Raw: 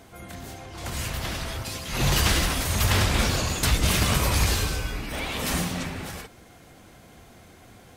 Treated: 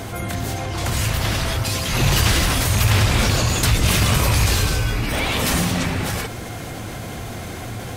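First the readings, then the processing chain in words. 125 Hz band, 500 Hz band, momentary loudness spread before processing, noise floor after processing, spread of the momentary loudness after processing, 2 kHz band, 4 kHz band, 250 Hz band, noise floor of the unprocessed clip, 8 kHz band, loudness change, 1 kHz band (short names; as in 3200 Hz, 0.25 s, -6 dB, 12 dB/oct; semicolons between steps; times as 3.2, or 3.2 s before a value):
+8.0 dB, +6.0 dB, 16 LU, -31 dBFS, 14 LU, +6.0 dB, +5.5 dB, +6.5 dB, -51 dBFS, +5.5 dB, +5.5 dB, +6.0 dB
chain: rattling part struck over -20 dBFS, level -19 dBFS; bell 110 Hz +9 dB 0.29 oct; fast leveller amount 50%; gain +1.5 dB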